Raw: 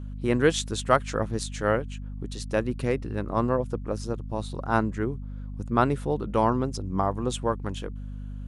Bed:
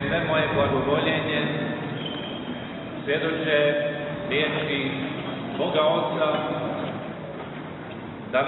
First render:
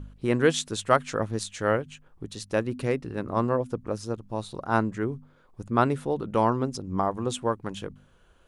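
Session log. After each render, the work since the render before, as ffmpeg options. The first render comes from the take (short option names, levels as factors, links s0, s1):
-af "bandreject=f=50:t=h:w=4,bandreject=f=100:t=h:w=4,bandreject=f=150:t=h:w=4,bandreject=f=200:t=h:w=4,bandreject=f=250:t=h:w=4"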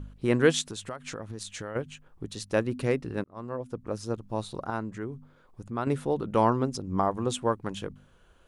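-filter_complex "[0:a]asplit=3[s0][s1][s2];[s0]afade=t=out:st=0.61:d=0.02[s3];[s1]acompressor=threshold=0.0224:ratio=8:attack=3.2:release=140:knee=1:detection=peak,afade=t=in:st=0.61:d=0.02,afade=t=out:st=1.75:d=0.02[s4];[s2]afade=t=in:st=1.75:d=0.02[s5];[s3][s4][s5]amix=inputs=3:normalize=0,asettb=1/sr,asplit=3[s6][s7][s8];[s6]atrim=end=4.704[s9];[s7]atrim=start=4.7:end=5.87,asetpts=PTS-STARTPTS,afade=t=in:d=0.004:c=qsin,afade=t=out:st=1.166:d=0.004:c=qsin,acompressor=threshold=0.00708:ratio=1.5:attack=3.2:release=140:knee=1:detection=peak[s10];[s8]atrim=start=5.866[s11];[s9][s10]acrossfade=d=0.004:c1=hsin:c2=qsin[s12];[s12][s11]acrossfade=d=0.004:c1=qsin:c2=hsin,asplit=2[s13][s14];[s13]atrim=end=3.24,asetpts=PTS-STARTPTS,afade=t=out:st=3.236:d=0.004:c=hsin[s15];[s14]atrim=start=3.24,asetpts=PTS-STARTPTS,afade=t=in:d=0.91[s16];[s15][s16]concat=n=2:v=0:a=1"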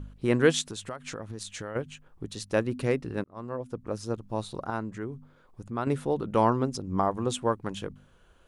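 -af anull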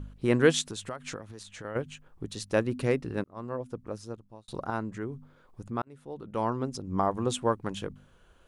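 -filter_complex "[0:a]asettb=1/sr,asplit=3[s0][s1][s2];[s0]atrim=end=1.174[s3];[s1]atrim=start=1.17:end=1.65,asetpts=PTS-STARTPTS,afade=t=in:d=0.004:c=qsin,afade=t=out:st=0.476:d=0.004:c=qsin,acrossover=split=420|1900|4000[s4][s5][s6][s7];[s4]acompressor=threshold=0.00501:ratio=3[s8];[s5]acompressor=threshold=0.00501:ratio=3[s9];[s6]acompressor=threshold=0.00178:ratio=3[s10];[s7]acompressor=threshold=0.00251:ratio=3[s11];[s8][s9][s10][s11]amix=inputs=4:normalize=0[s12];[s2]atrim=start=1.646[s13];[s3][s12]acrossfade=d=0.004:c1=hsin:c2=qsin[s14];[s14][s13]acrossfade=d=0.004:c1=qsin:c2=hsin,asplit=3[s15][s16][s17];[s15]atrim=end=4.48,asetpts=PTS-STARTPTS,afade=t=out:st=3.56:d=0.92[s18];[s16]atrim=start=4.48:end=5.82,asetpts=PTS-STARTPTS,afade=t=in:d=0.004:c=hsin,afade=t=out:st=1.336:d=0.004:c=hsin[s19];[s17]atrim=start=5.82,asetpts=PTS-STARTPTS,afade=t=in:d=1.34[s20];[s18][s19][s20]concat=n=3:v=0:a=1"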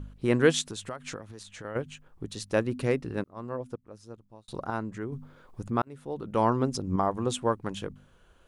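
-filter_complex "[0:a]asettb=1/sr,asplit=3[s0][s1][s2];[s0]atrim=end=5.124[s3];[s1]atrim=start=5.12:end=6.96,asetpts=PTS-STARTPTS,afade=t=in:d=0.004:c=qsin,afade=t=out:st=1.836:d=0.004:c=qsin,acontrast=31[s4];[s2]atrim=start=6.956[s5];[s3][s4]acrossfade=d=0.004:c1=hsin:c2=qsin[s6];[s6][s5]acrossfade=d=0.004:c1=qsin:c2=hsin,asplit=2[s7][s8];[s7]atrim=end=3.76,asetpts=PTS-STARTPTS,afade=t=out:st=3.756:d=0.004:c=hsin:silence=0.125893[s9];[s8]atrim=start=3.76,asetpts=PTS-STARTPTS,afade=t=in:d=0.76:silence=0.125893[s10];[s9][s10]concat=n=2:v=0:a=1"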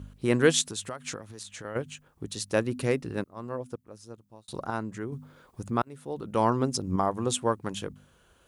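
-af "highpass=51,highshelf=f=5300:g=9"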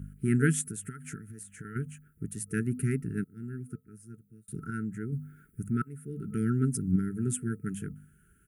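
-af "afftfilt=real='re*(1-between(b*sr/4096,450,1300))':imag='im*(1-between(b*sr/4096,450,1300))':win_size=4096:overlap=0.75,firequalizer=gain_entry='entry(100,0);entry(150,7);entry(360,-7);entry(710,2);entry(2000,-6);entry(3800,-26);entry(9600,4)':delay=0.05:min_phase=1"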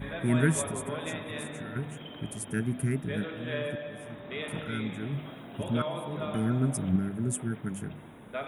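-filter_complex "[1:a]volume=0.211[s0];[0:a][s0]amix=inputs=2:normalize=0"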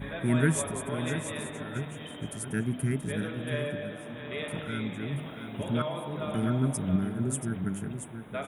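-af "aecho=1:1:680:0.355"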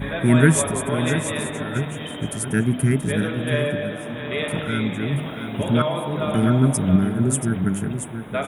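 -af "volume=3.16"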